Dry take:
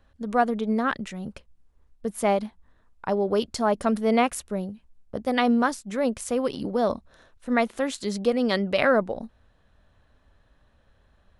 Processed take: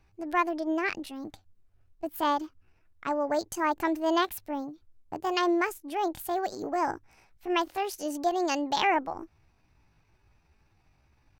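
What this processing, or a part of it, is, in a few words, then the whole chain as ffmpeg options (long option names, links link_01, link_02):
chipmunk voice: -af "asetrate=64194,aresample=44100,atempo=0.686977,volume=-4.5dB"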